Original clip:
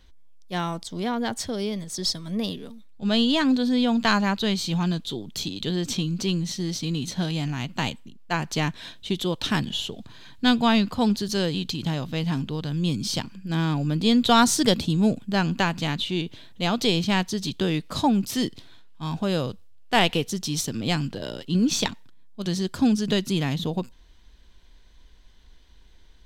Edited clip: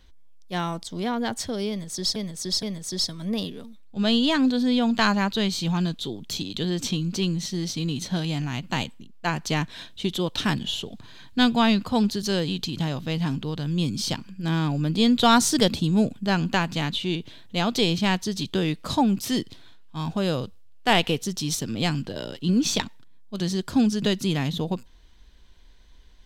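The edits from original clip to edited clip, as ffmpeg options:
-filter_complex "[0:a]asplit=3[a][b][c];[a]atrim=end=2.162[d];[b]atrim=start=1.688:end=2.162[e];[c]atrim=start=1.688[f];[d][e]acrossfade=d=0.004:c1=hsin:c2=hsin[g];[g][f]acrossfade=d=0.004:c1=hsin:c2=hsin"

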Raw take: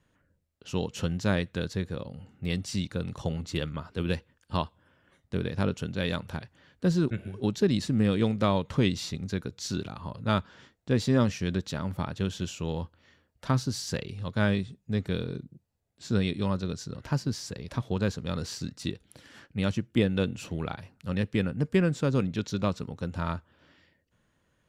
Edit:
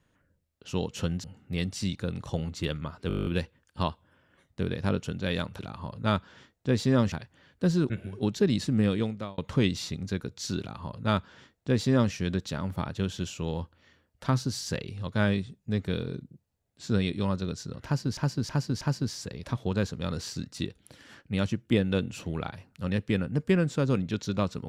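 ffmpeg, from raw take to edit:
-filter_complex "[0:a]asplit=17[a][b][c][d][e][f][g][h][i][j][k][l][m][n][o][p][q];[a]atrim=end=1.242[r];[b]atrim=start=2.158:end=4.022[s];[c]atrim=start=3.998:end=4.022[t];[d]atrim=start=3.998:end=4.022[u];[e]atrim=start=3.998:end=4.022[v];[f]atrim=start=3.998:end=4.022[w];[g]atrim=start=3.998:end=4.022[x];[h]atrim=start=3.998:end=4.022[y];[i]atrim=start=3.998:end=4.022[z];[j]atrim=start=3.998:end=4.022[aa];[k]atrim=start=3.998:end=6.332[ab];[l]atrim=start=9.808:end=11.342[ac];[m]atrim=start=6.328:end=8.59,asetpts=PTS-STARTPTS,afade=t=out:st=1.742:d=0.52[ad];[n]atrim=start=8.59:end=17.382,asetpts=PTS-STARTPTS,afade=t=in:d=0.004:c=hsin[ae];[o]atrim=start=17.058:end=17.382[af];[p]atrim=start=17.058:end=17.382[ag];[q]atrim=start=17.058[ah];[r][s]acrossfade=d=0.004:c1=hsin:c2=hsin[ai];[ai][t]acrossfade=d=0.004:c1=hsin:c2=hsin[aj];[aj][u]acrossfade=d=0.004:c1=hsin:c2=hsin[ak];[ak][v]acrossfade=d=0.004:c1=hsin:c2=hsin[al];[al][w]acrossfade=d=0.004:c1=hsin:c2=hsin[am];[am][x]acrossfade=d=0.004:c1=hsin:c2=hsin[an];[an][y]acrossfade=d=0.004:c1=hsin:c2=hsin[ao];[ao][z]acrossfade=d=0.004:c1=hsin:c2=hsin[ap];[ap][aa]acrossfade=d=0.004:c1=hsin:c2=hsin[aq];[aq][ab]acrossfade=d=0.004:c1=hsin:c2=hsin[ar];[ar][ac]acrossfade=d=0.004:c1=hsin:c2=hsin[as];[ad][ae]concat=n=2:v=0:a=1[at];[as][at]acrossfade=d=0.004:c1=hsin:c2=hsin[au];[au][af]acrossfade=d=0.004:c1=hsin:c2=hsin[av];[av][ag]acrossfade=d=0.004:c1=hsin:c2=hsin[aw];[aw][ah]acrossfade=d=0.004:c1=hsin:c2=hsin"

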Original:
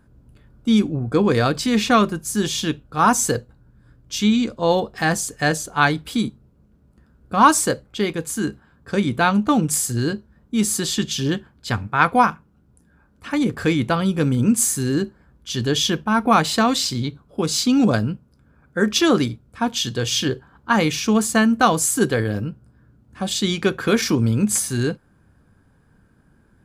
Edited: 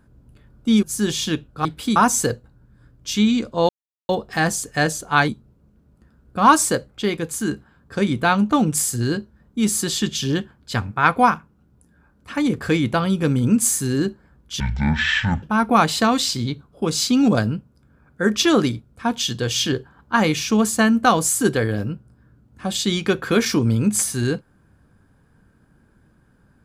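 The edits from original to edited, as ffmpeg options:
-filter_complex "[0:a]asplit=8[a][b][c][d][e][f][g][h];[a]atrim=end=0.832[i];[b]atrim=start=2.188:end=3.012[j];[c]atrim=start=5.928:end=6.242[k];[d]atrim=start=3.008:end=4.74,asetpts=PTS-STARTPTS,afade=t=out:st=1.728:d=0.004:c=hsin,apad=pad_dur=0.4[l];[e]atrim=start=4.74:end=5.932,asetpts=PTS-STARTPTS,afade=t=in:d=0.004:c=hsin[m];[f]atrim=start=6.238:end=15.564[n];[g]atrim=start=15.56:end=15.99,asetpts=PTS-STARTPTS,asetrate=22932,aresample=44100,atrim=end_sample=36467,asetpts=PTS-STARTPTS[o];[h]atrim=start=15.986[p];[i][j]acrossfade=d=0.004:c1=hsin:c2=hsin[q];[q][k]acrossfade=d=0.004:c1=hsin:c2=hsin[r];[l][m]concat=n=2:v=0:a=1[s];[r][s]acrossfade=d=0.004:c1=hsin:c2=hsin[t];[t][n]acrossfade=d=0.004:c1=hsin:c2=hsin[u];[u][o]acrossfade=d=0.004:c1=hsin:c2=hsin[v];[v][p]acrossfade=d=0.004:c1=hsin:c2=hsin"

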